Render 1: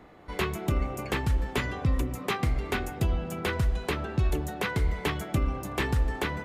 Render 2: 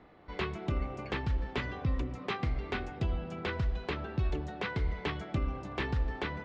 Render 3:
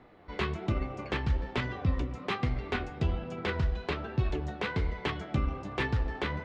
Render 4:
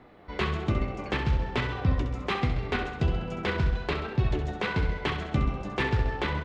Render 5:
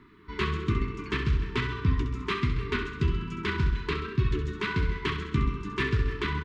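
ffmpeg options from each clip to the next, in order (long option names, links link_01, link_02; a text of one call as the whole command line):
ffmpeg -i in.wav -af "lowpass=frequency=5000:width=0.5412,lowpass=frequency=5000:width=1.3066,volume=-5.5dB" out.wav
ffmpeg -i in.wav -af "flanger=delay=7.9:depth=6.5:regen=54:speed=1.2:shape=sinusoidal,aeval=exprs='0.0596*(cos(1*acos(clip(val(0)/0.0596,-1,1)))-cos(1*PI/2))+0.0015*(cos(7*acos(clip(val(0)/0.0596,-1,1)))-cos(7*PI/2))':channel_layout=same,volume=7dB" out.wav
ffmpeg -i in.wav -af "aecho=1:1:66|132|198|264|330|396|462:0.398|0.231|0.134|0.0777|0.0451|0.0261|0.0152,volume=3dB" out.wav
ffmpeg -i in.wav -filter_complex "[0:a]afftfilt=real='re*(1-between(b*sr/4096,450,910))':imag='im*(1-between(b*sr/4096,450,910))':win_size=4096:overlap=0.75,asplit=2[link_01][link_02];[link_02]adelay=300,highpass=300,lowpass=3400,asoftclip=type=hard:threshold=-22.5dB,volume=-16dB[link_03];[link_01][link_03]amix=inputs=2:normalize=0" out.wav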